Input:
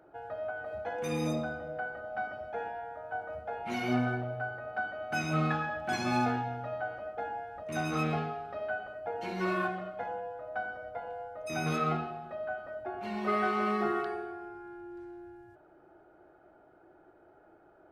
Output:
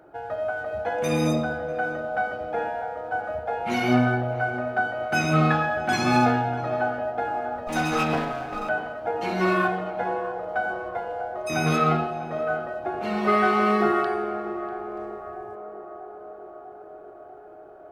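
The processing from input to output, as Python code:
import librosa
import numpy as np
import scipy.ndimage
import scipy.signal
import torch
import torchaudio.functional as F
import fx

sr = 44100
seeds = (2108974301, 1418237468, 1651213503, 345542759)

p1 = fx.lower_of_two(x, sr, delay_ms=4.0, at=(7.67, 8.69))
p2 = np.sign(p1) * np.maximum(np.abs(p1) - 10.0 ** (-52.5 / 20.0), 0.0)
p3 = p1 + F.gain(torch.from_numpy(p2), -11.0).numpy()
p4 = fx.echo_banded(p3, sr, ms=644, feedback_pct=78, hz=590.0, wet_db=-10.0)
y = F.gain(torch.from_numpy(p4), 7.0).numpy()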